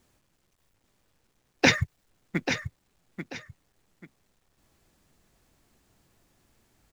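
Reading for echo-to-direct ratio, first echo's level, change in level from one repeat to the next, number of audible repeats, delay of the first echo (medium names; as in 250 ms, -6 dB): -8.0 dB, -8.5 dB, -11.5 dB, 2, 838 ms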